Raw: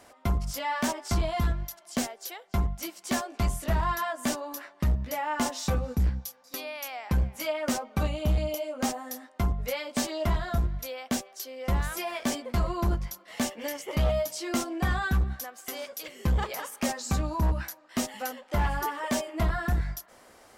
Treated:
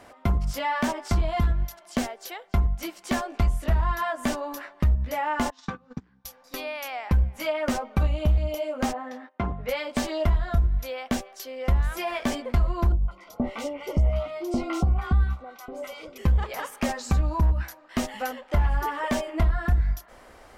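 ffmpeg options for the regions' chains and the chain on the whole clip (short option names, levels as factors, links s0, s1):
-filter_complex "[0:a]asettb=1/sr,asplit=3[s0][s1][s2];[s0]atrim=end=5.504[s3];[s1]atrim=start=5.5:end=6.25,asetpts=PTS-STARTPTS,afade=t=in:d=0.004:c=qsin,afade=t=out:st=0.746:d=0.004:c=qsin,acompressor=threshold=0.0398:ratio=6:attack=3.2:release=140:knee=1:detection=peak,highpass=f=150:w=0.5412,highpass=f=150:w=1.3066,equalizer=f=250:t=q:w=4:g=3,equalizer=f=590:t=q:w=4:g=-10,equalizer=f=1100:t=q:w=4:g=7,equalizer=f=1600:t=q:w=4:g=6,equalizer=f=3400:t=q:w=4:g=3,lowpass=f=6900:w=0.5412,lowpass=f=6900:w=1.3066,agate=range=0.0708:threshold=0.0178:ratio=16:release=100:detection=peak[s4];[s2]atrim=start=6.246[s5];[s3][s4]acrossfade=d=0.004:c1=hsin:c2=qsin[s6];[s6][s5]acrossfade=d=0.004:c1=qsin:c2=hsin,asettb=1/sr,asplit=3[s7][s8][s9];[s7]atrim=end=8.934[s10];[s8]atrim=start=8.93:end=9.69,asetpts=PTS-STARTPTS,afade=t=in:d=0.004:c=qsin,afade=t=out:st=0.756:d=0.004:c=qsin,agate=range=0.2:threshold=0.002:ratio=16:release=100:detection=peak,highpass=170,lowpass=2900[s11];[s9]atrim=start=9.686[s12];[s10][s11]acrossfade=d=0.004:c1=hsin:c2=qsin[s13];[s13][s12]acrossfade=d=0.004:c1=qsin:c2=hsin,asettb=1/sr,asplit=3[s14][s15][s16];[s14]atrim=end=12.924[s17];[s15]atrim=start=12.92:end=16.18,asetpts=PTS-STARTPTS,afade=t=in:d=0.004:c=qsin,afade=t=out:st=3.256:d=0.004:c=qsin,asuperstop=centerf=1700:order=8:qfactor=4.9,highshelf=f=5100:g=-12,acrossover=split=870|3000[s18][s19][s20];[s19]adelay=160[s21];[s20]adelay=190[s22];[s18][s21][s22]amix=inputs=3:normalize=0,atrim=end_sample=143766[s23];[s16]atrim=start=16.176[s24];[s17][s23]acrossfade=d=0.004:c1=hsin:c2=qsin[s25];[s25][s24]acrossfade=d=0.004:c1=qsin:c2=hsin,asubboost=boost=3.5:cutoff=71,acompressor=threshold=0.0447:ratio=3,bass=f=250:g=2,treble=f=4000:g=-8,volume=1.78"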